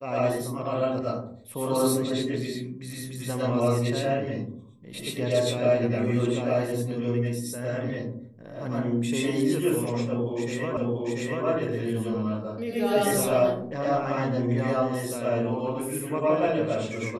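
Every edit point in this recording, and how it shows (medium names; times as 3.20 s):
10.77 s: repeat of the last 0.69 s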